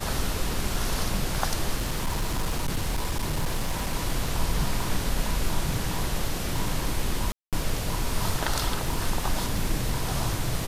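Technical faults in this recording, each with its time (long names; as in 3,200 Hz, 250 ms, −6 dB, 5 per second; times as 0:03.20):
surface crackle 17 per second −29 dBFS
0:01.76–0:03.96: clipping −22 dBFS
0:07.32–0:07.53: drop-out 207 ms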